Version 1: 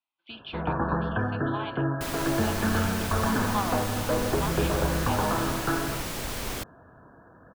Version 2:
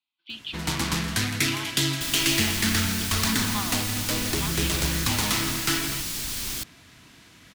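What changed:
first sound: remove brick-wall FIR low-pass 1800 Hz; second sound -3.0 dB; master: add EQ curve 310 Hz 0 dB, 520 Hz -11 dB, 4500 Hz +10 dB

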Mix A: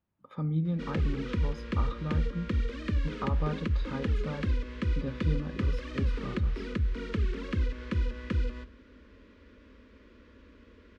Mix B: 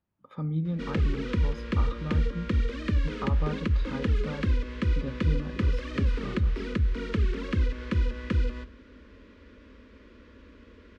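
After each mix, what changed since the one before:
background +3.5 dB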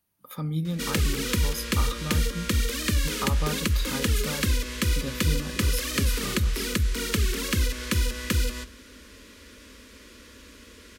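master: remove tape spacing loss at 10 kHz 39 dB

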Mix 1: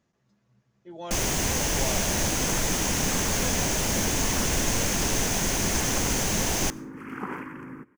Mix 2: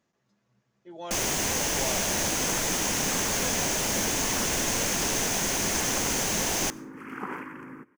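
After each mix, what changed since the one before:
master: add low shelf 150 Hz -11 dB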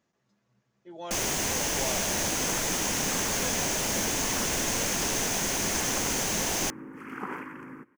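reverb: off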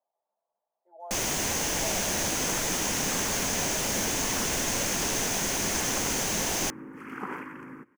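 speech: add Butterworth band-pass 740 Hz, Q 2.4

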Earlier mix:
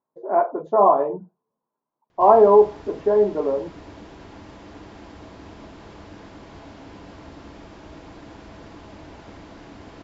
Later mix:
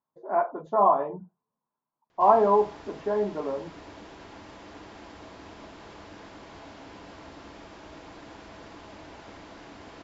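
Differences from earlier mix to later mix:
speech: add bell 430 Hz -10 dB 1.6 oct; background: add low shelf 340 Hz -8.5 dB

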